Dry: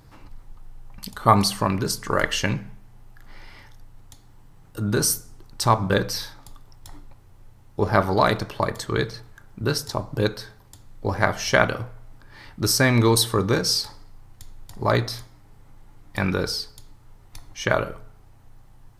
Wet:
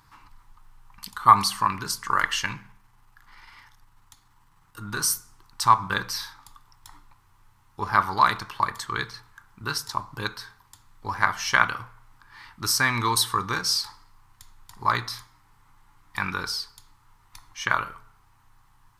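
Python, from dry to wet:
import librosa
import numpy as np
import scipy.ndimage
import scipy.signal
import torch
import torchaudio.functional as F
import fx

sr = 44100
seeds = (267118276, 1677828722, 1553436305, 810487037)

y = fx.halfwave_gain(x, sr, db=-3.0, at=(2.43, 5.04))
y = fx.low_shelf_res(y, sr, hz=780.0, db=-9.0, q=3.0)
y = F.gain(torch.from_numpy(y), -2.0).numpy()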